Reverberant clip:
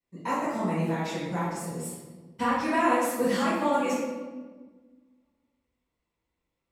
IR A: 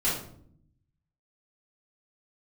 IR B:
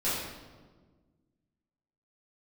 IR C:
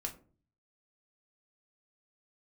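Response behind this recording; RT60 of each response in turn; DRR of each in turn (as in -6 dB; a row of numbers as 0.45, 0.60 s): B; 0.60, 1.5, 0.40 s; -9.5, -12.0, 1.0 dB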